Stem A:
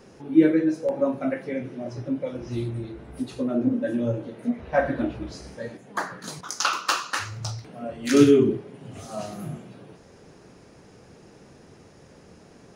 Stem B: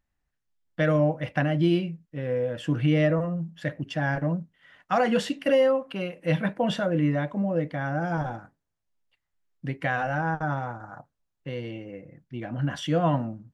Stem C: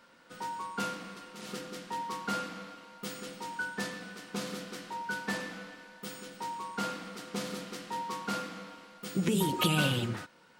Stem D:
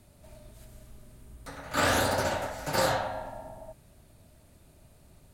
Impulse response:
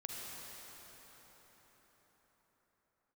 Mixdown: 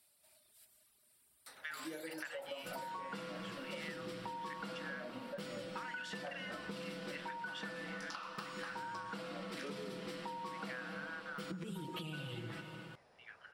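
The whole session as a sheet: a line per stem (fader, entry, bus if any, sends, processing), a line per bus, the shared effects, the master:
-12.0 dB, 1.50 s, bus A, no send, resonant low shelf 460 Hz -11 dB, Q 1.5
-8.5 dB, 0.85 s, no bus, no send, steep high-pass 1.2 kHz 36 dB/octave
+0.5 dB, 2.35 s, bus A, send -20.5 dB, comb 6.1 ms, depth 88%
+1.5 dB, 0.00 s, bus A, no send, reverb removal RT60 0.97 s; differentiator; compression, threshold -44 dBFS, peak gain reduction 12 dB
bus A: 0.0 dB, peaking EQ 6.5 kHz -14 dB 0.21 oct; compression, threshold -37 dBFS, peak gain reduction 17.5 dB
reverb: on, RT60 5.4 s, pre-delay 38 ms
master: treble shelf 10 kHz -10.5 dB; compression, threshold -41 dBFS, peak gain reduction 9 dB

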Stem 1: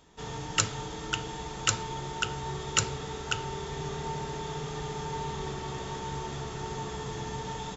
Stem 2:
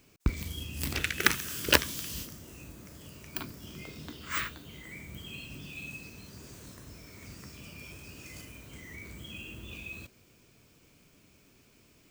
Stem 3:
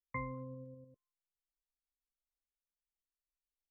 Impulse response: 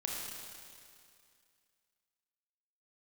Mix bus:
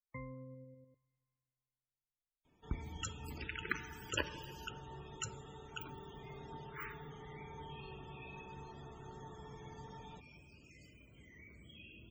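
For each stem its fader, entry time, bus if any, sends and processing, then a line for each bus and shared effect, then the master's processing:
-16.0 dB, 2.45 s, send -16.5 dB, none
-14.5 dB, 2.45 s, send -9 dB, none
-5.0 dB, 0.00 s, send -22 dB, treble shelf 2.1 kHz -9 dB; band-stop 1.1 kHz, Q 5.7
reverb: on, RT60 2.3 s, pre-delay 26 ms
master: loudest bins only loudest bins 64

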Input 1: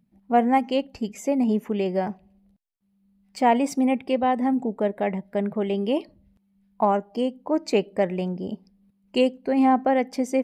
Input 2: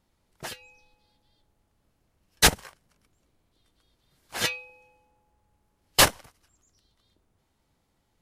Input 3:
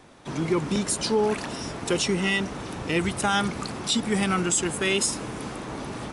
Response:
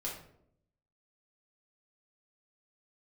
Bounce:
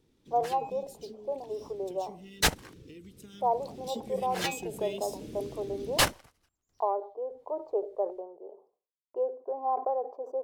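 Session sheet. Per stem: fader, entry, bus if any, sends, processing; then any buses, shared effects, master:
-7.0 dB, 0.00 s, no send, elliptic band-pass 400–1100 Hz, stop band 40 dB; expander -53 dBFS; decay stretcher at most 150 dB/s
-5.5 dB, 0.00 s, no send, trance gate "xxxxx.x.." 74 bpm -12 dB
3.35 s -11 dB -> 4.11 s -1.5 dB, 0.00 s, no send, FFT filter 470 Hz 0 dB, 730 Hz -30 dB, 3.5 kHz -3 dB; compression 5:1, threshold -31 dBFS, peak gain reduction 11 dB; flange 0.72 Hz, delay 2 ms, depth 4.3 ms, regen -63%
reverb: none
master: decimation joined by straight lines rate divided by 2×

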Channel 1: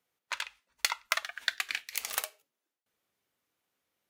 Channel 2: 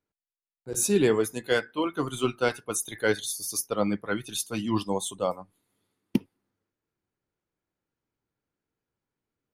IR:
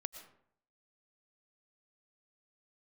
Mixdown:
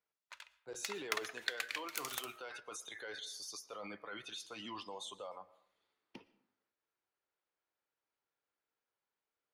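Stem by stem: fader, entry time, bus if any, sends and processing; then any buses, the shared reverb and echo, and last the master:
0.70 s -21 dB -> 1.14 s -10.5 dB -> 2.08 s -10.5 dB -> 2.35 s -19 dB, 0.00 s, send -4 dB, none
-5.0 dB, 0.00 s, send -3.5 dB, three-band isolator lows -20 dB, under 480 Hz, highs -24 dB, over 6 kHz; peak limiter -35.5 dBFS, peak gain reduction 21 dB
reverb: on, RT60 0.65 s, pre-delay 75 ms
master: none

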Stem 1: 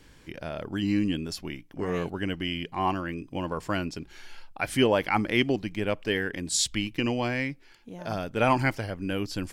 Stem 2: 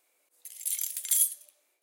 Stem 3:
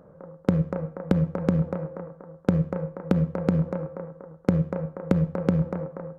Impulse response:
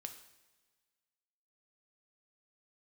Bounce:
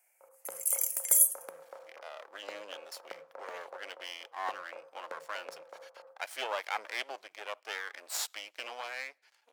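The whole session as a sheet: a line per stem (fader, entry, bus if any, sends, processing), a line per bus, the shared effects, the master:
-4.5 dB, 1.60 s, send -20 dB, half-wave rectifier
+3.0 dB, 0.00 s, no send, spectral gate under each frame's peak -30 dB strong; static phaser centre 770 Hz, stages 8
-14.0 dB, 0.00 s, send -3 dB, gate with hold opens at -40 dBFS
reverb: on, pre-delay 3 ms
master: high-pass 600 Hz 24 dB/octave; peaking EQ 3.1 kHz -2.5 dB

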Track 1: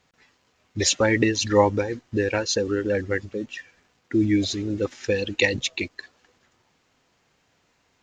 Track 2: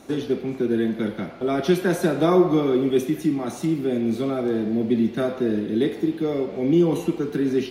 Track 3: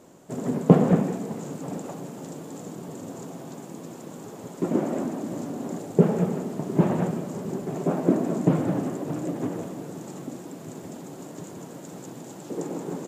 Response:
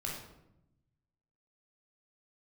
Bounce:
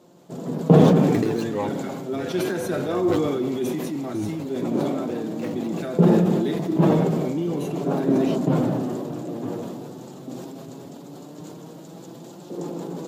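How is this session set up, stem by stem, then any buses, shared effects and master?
-1.5 dB, 0.00 s, no send, median filter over 25 samples; random-step tremolo, depth 90%
-4.0 dB, 0.65 s, no send, none
+2.5 dB, 0.00 s, no send, graphic EQ 2/4/8 kHz -6/+6/-7 dB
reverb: none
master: high-pass 97 Hz; flange 0.16 Hz, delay 5.6 ms, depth 3 ms, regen +54%; decay stretcher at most 22 dB/s

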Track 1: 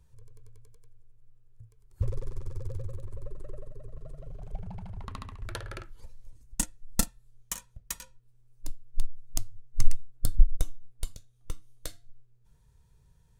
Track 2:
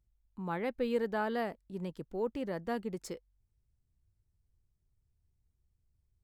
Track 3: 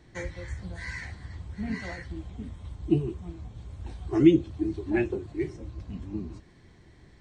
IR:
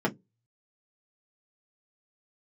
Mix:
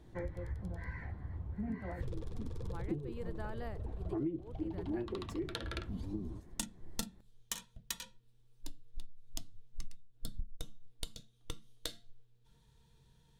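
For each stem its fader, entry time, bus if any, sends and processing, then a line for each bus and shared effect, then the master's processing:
-5.0 dB, 0.00 s, send -12.5 dB, peaking EQ 3.6 kHz +13 dB 0.97 oct
-10.0 dB, 2.25 s, no send, none
-2.0 dB, 0.00 s, no send, low-pass 1.1 kHz 12 dB/octave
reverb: on, RT60 0.15 s, pre-delay 3 ms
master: compression 6:1, threshold -35 dBFS, peak gain reduction 19.5 dB

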